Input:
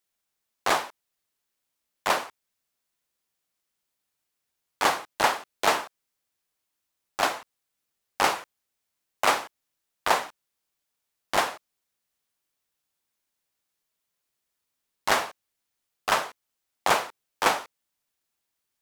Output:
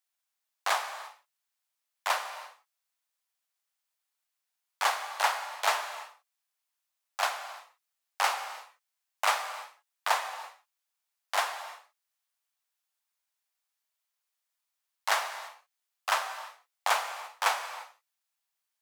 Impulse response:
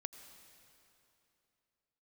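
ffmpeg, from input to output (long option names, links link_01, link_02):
-filter_complex "[0:a]highpass=frequency=660:width=0.5412,highpass=frequency=660:width=1.3066[link_01];[1:a]atrim=start_sample=2205,afade=type=out:start_time=0.4:duration=0.01,atrim=end_sample=18081[link_02];[link_01][link_02]afir=irnorm=-1:irlink=0"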